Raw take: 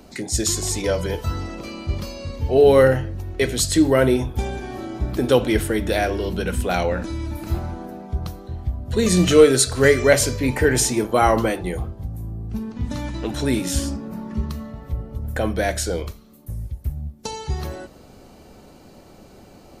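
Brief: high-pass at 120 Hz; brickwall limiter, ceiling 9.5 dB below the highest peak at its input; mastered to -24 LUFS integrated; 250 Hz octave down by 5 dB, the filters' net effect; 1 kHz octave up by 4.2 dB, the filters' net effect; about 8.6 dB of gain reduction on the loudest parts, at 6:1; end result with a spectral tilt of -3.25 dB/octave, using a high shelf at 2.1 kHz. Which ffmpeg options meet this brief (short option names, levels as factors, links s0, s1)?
-af "highpass=120,equalizer=f=250:t=o:g=-7,equalizer=f=1000:t=o:g=5,highshelf=f=2100:g=6,acompressor=threshold=0.141:ratio=6,volume=1.41,alimiter=limit=0.251:level=0:latency=1"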